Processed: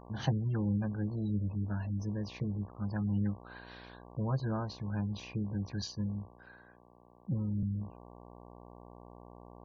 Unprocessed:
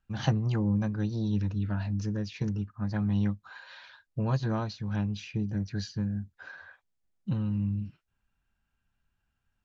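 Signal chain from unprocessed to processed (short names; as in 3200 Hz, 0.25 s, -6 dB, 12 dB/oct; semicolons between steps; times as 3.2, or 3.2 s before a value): buzz 60 Hz, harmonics 19, -48 dBFS -2 dB/oct; spectral gate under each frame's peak -30 dB strong; 5.82–7.63 three-band expander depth 70%; gain -4.5 dB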